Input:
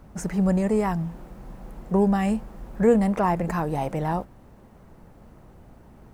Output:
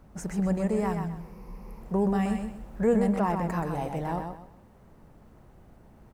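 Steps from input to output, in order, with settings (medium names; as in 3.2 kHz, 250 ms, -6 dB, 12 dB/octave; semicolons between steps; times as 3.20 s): 1.19–1.81 s: rippled EQ curve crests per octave 0.84, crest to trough 12 dB; feedback delay 127 ms, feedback 29%, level -6 dB; trim -5.5 dB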